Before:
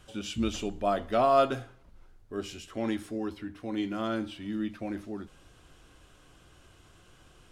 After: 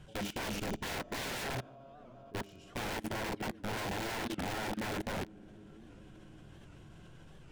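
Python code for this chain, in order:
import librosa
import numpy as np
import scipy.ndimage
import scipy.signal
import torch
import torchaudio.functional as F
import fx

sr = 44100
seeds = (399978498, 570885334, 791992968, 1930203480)

y = fx.peak_eq(x, sr, hz=150.0, db=11.0, octaves=0.64)
y = fx.rev_schroeder(y, sr, rt60_s=1.4, comb_ms=28, drr_db=8.5)
y = fx.rider(y, sr, range_db=4, speed_s=0.5)
y = fx.echo_diffused(y, sr, ms=499, feedback_pct=50, wet_db=-15.5)
y = (np.mod(10.0 ** (28.5 / 20.0) * y + 1.0, 2.0) - 1.0) / 10.0 ** (28.5 / 20.0)
y = fx.level_steps(y, sr, step_db=18)
y = fx.high_shelf(y, sr, hz=3400.0, db=-9.0)
y = fx.notch(y, sr, hz=1200.0, q=5.9)
y = fx.record_warp(y, sr, rpm=78.0, depth_cents=160.0)
y = y * librosa.db_to_amplitude(1.0)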